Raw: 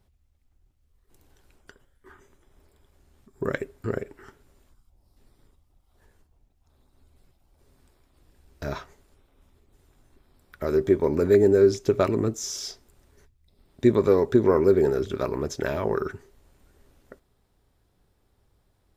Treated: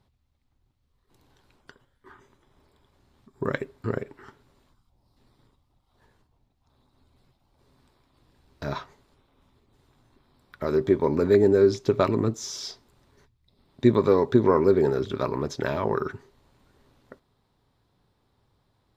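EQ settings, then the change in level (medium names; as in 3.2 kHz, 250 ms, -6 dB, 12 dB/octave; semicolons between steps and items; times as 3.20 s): graphic EQ 125/250/500/1000/2000/4000 Hz +10/+7/+4/+11/+4/+11 dB; -8.5 dB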